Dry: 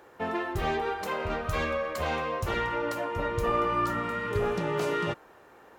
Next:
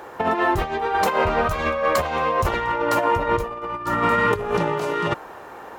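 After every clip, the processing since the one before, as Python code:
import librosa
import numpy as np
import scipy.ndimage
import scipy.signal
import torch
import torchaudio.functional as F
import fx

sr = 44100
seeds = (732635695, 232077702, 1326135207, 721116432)

y = fx.peak_eq(x, sr, hz=900.0, db=5.5, octaves=1.1)
y = fx.over_compress(y, sr, threshold_db=-30.0, ratio=-0.5)
y = y * librosa.db_to_amplitude(9.0)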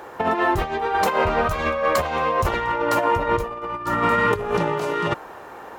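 y = x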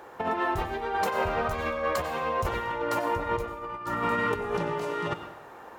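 y = fx.rev_plate(x, sr, seeds[0], rt60_s=0.7, hf_ratio=0.95, predelay_ms=80, drr_db=9.0)
y = y * librosa.db_to_amplitude(-8.0)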